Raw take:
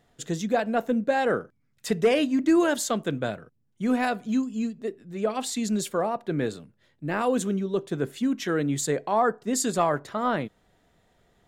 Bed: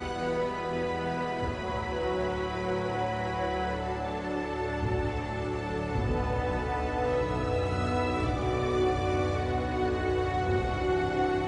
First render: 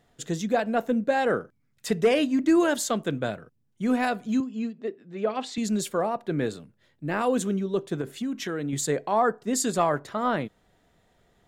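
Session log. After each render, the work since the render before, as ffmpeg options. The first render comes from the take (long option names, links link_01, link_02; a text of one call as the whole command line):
ffmpeg -i in.wav -filter_complex "[0:a]asettb=1/sr,asplit=3[link_01][link_02][link_03];[link_01]atrim=end=4.404[link_04];[link_02]atrim=start=4.4:end=5.58,asetpts=PTS-STARTPTS,afade=type=in:duration=0.004:curve=qsin,afade=type=out:start_time=1.176:duration=0.004:curve=qsin,highpass=200,lowpass=4000[link_05];[link_03]atrim=start=5.576[link_06];[link_04][link_05]acrossfade=duration=0.004:curve1=hsin:curve2=qsin[link_07];[link_07][link_06]acrossfade=duration=0.004:curve1=qsin:curve2=hsin,asettb=1/sr,asplit=3[link_08][link_09][link_10];[link_08]atrim=end=8.014[link_11];[link_09]atrim=start=8.01:end=8.73,asetpts=PTS-STARTPTS,afade=type=in:duration=0.004:curve=qsin,afade=type=out:start_time=0.716:duration=0.004:curve=qsin,acompressor=threshold=-26dB:ratio=6:attack=3.2:release=140:knee=1:detection=peak[link_12];[link_10]atrim=start=8.726[link_13];[link_11][link_12]acrossfade=duration=0.004:curve1=hsin:curve2=qsin[link_14];[link_14][link_13]acrossfade=duration=0.004:curve1=qsin:curve2=hsin" out.wav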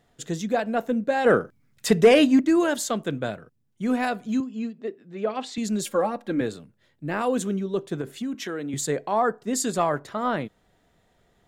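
ffmpeg -i in.wav -filter_complex "[0:a]asplit=3[link_01][link_02][link_03];[link_01]afade=type=out:start_time=1.24:duration=0.02[link_04];[link_02]acontrast=75,afade=type=in:start_time=1.24:duration=0.02,afade=type=out:start_time=2.39:duration=0.02[link_05];[link_03]afade=type=in:start_time=2.39:duration=0.02[link_06];[link_04][link_05][link_06]amix=inputs=3:normalize=0,asettb=1/sr,asplit=3[link_07][link_08][link_09];[link_07]atrim=end=5.844[link_10];[link_08]atrim=start=5.84:end=6.41,asetpts=PTS-STARTPTS,afade=type=in:duration=0.004:curve=qsin,afade=type=out:start_time=0.566:duration=0.004:curve=qsin,aecho=1:1:3.7:0.86,atrim=end_sample=25137[link_11];[link_09]atrim=start=6.406[link_12];[link_10][link_11]acrossfade=duration=0.004:curve1=hsin:curve2=qsin[link_13];[link_13][link_12]acrossfade=duration=0.004:curve1=qsin:curve2=hsin,asettb=1/sr,asplit=3[link_14][link_15][link_16];[link_14]atrim=end=8.344[link_17];[link_15]atrim=start=8.34:end=8.74,asetpts=PTS-STARTPTS,afade=type=in:duration=0.004:curve=qsin,afade=type=out:start_time=0.396:duration=0.004:curve=qsin,highpass=200[link_18];[link_16]atrim=start=8.736[link_19];[link_17][link_18]acrossfade=duration=0.004:curve1=hsin:curve2=qsin[link_20];[link_20][link_19]acrossfade=duration=0.004:curve1=qsin:curve2=hsin" out.wav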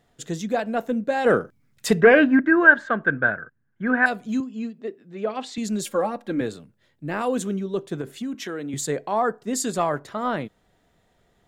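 ffmpeg -i in.wav -filter_complex "[0:a]asettb=1/sr,asplit=3[link_01][link_02][link_03];[link_01]atrim=end=2.014[link_04];[link_02]atrim=start=2.01:end=4.06,asetpts=PTS-STARTPTS,afade=type=in:duration=0.004:curve=qsin,afade=type=out:start_time=2.046:duration=0.004:curve=qsin,lowpass=frequency=1600:width_type=q:width=12[link_05];[link_03]atrim=start=4.056[link_06];[link_04][link_05]acrossfade=duration=0.004:curve1=hsin:curve2=qsin[link_07];[link_07][link_06]acrossfade=duration=0.004:curve1=qsin:curve2=hsin" out.wav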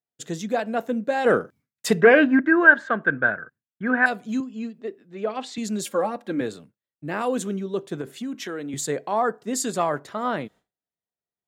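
ffmpeg -i in.wav -af "highpass=frequency=140:poles=1,agate=range=-33dB:threshold=-44dB:ratio=3:detection=peak" out.wav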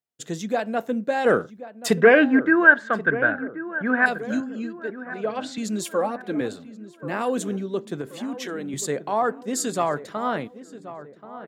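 ffmpeg -i in.wav -filter_complex "[0:a]asplit=2[link_01][link_02];[link_02]adelay=1081,lowpass=frequency=1500:poles=1,volume=-13.5dB,asplit=2[link_03][link_04];[link_04]adelay=1081,lowpass=frequency=1500:poles=1,volume=0.52,asplit=2[link_05][link_06];[link_06]adelay=1081,lowpass=frequency=1500:poles=1,volume=0.52,asplit=2[link_07][link_08];[link_08]adelay=1081,lowpass=frequency=1500:poles=1,volume=0.52,asplit=2[link_09][link_10];[link_10]adelay=1081,lowpass=frequency=1500:poles=1,volume=0.52[link_11];[link_01][link_03][link_05][link_07][link_09][link_11]amix=inputs=6:normalize=0" out.wav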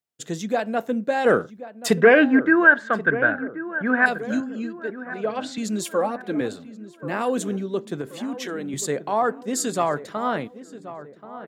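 ffmpeg -i in.wav -af "volume=1dB,alimiter=limit=-3dB:level=0:latency=1" out.wav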